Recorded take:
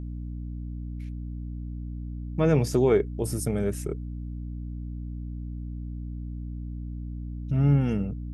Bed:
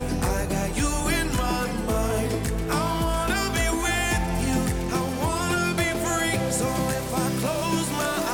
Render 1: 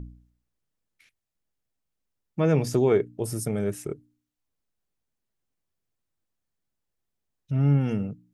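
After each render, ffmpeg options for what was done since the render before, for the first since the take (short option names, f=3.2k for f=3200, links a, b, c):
-af "bandreject=f=60:t=h:w=4,bandreject=f=120:t=h:w=4,bandreject=f=180:t=h:w=4,bandreject=f=240:t=h:w=4,bandreject=f=300:t=h:w=4"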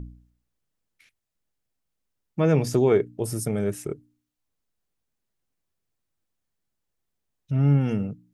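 -af "volume=1.5dB"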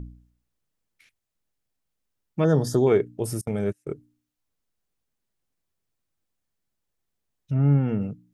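-filter_complex "[0:a]asettb=1/sr,asplit=3[a][b][c];[a]atrim=end=2.444[d];[b]atrim=start=2.44:end=2.87,asetpts=PTS-STARTPTS,afade=t=in:d=0.004:c=qsin,afade=t=out:st=0.426:d=0.004:c=qsin,asuperstop=centerf=2400:order=20:qfactor=2[e];[c]atrim=start=2.866[f];[d][e]acrossfade=d=0.004:c1=hsin:c2=qsin[g];[g][f]acrossfade=d=0.004:c1=qsin:c2=hsin,asettb=1/sr,asplit=3[h][i][j];[h]atrim=end=3.414[k];[i]atrim=start=3.41:end=3.87,asetpts=PTS-STARTPTS,afade=t=in:d=0.004:c=qsin,afade=t=out:st=0.456:d=0.004:c=qsin,agate=range=-31dB:threshold=-27dB:ratio=16:release=100:detection=peak[l];[j]atrim=start=3.866[m];[k][l]acrossfade=d=0.004:c1=hsin:c2=qsin[n];[n][m]acrossfade=d=0.004:c1=qsin:c2=hsin,asplit=3[o][p][q];[o]afade=t=out:st=7.53:d=0.02[r];[p]lowpass=1.9k,afade=t=in:st=7.53:d=0.02,afade=t=out:st=8:d=0.02[s];[q]afade=t=in:st=8:d=0.02[t];[r][s][t]amix=inputs=3:normalize=0"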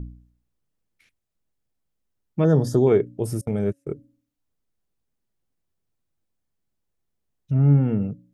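-af "tiltshelf=f=720:g=3.5,bandreject=f=277.8:t=h:w=4,bandreject=f=555.6:t=h:w=4"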